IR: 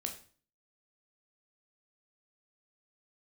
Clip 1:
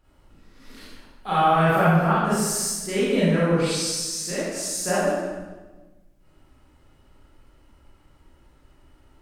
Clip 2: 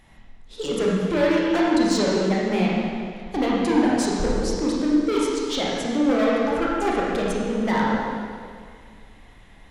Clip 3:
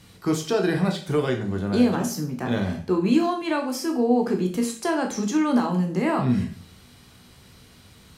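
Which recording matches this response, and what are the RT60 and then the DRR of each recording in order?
3; 1.3 s, 2.0 s, 0.40 s; -9.5 dB, -5.0 dB, 3.0 dB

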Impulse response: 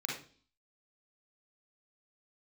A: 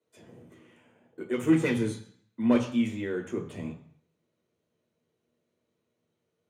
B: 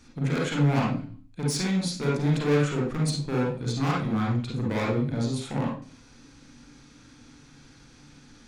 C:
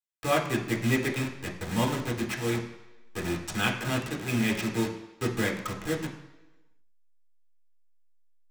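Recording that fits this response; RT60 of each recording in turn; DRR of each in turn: B; 0.60 s, 0.45 s, 1.1 s; 1.0 dB, -3.5 dB, -2.0 dB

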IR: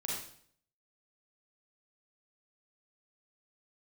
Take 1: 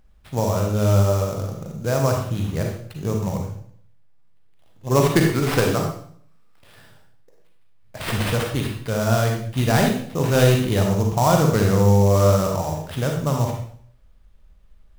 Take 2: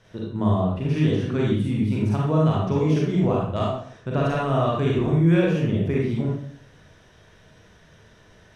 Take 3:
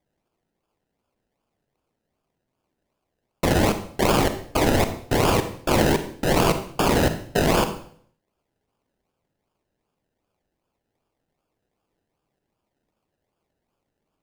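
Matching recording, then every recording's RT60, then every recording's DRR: 2; 0.60 s, 0.60 s, 0.60 s; 1.0 dB, -4.5 dB, 9.0 dB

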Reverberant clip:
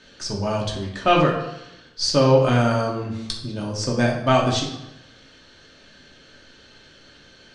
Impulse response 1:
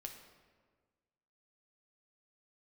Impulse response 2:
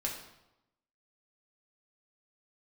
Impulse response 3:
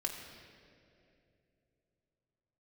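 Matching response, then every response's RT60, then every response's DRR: 2; 1.5 s, 0.90 s, 2.8 s; 3.0 dB, -2.5 dB, -0.5 dB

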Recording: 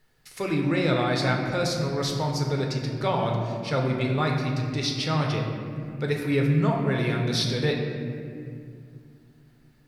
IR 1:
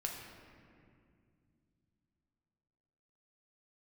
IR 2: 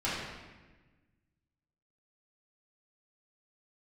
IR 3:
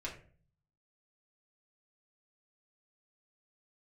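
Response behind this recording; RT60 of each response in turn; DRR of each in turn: 1; 2.3 s, 1.3 s, 0.45 s; 0.0 dB, -11.0 dB, -5.5 dB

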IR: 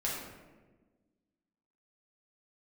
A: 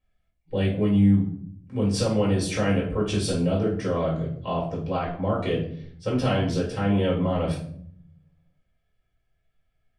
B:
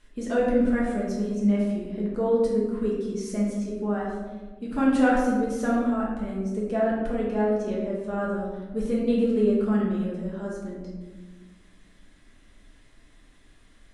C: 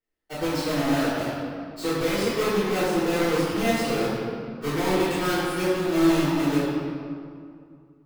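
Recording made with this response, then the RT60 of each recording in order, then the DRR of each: B; 0.65 s, 1.3 s, 2.3 s; -5.5 dB, -5.5 dB, -18.0 dB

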